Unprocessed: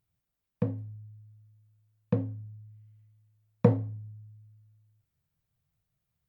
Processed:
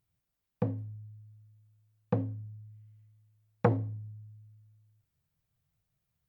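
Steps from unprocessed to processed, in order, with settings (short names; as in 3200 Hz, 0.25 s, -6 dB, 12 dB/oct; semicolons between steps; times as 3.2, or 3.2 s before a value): core saturation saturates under 750 Hz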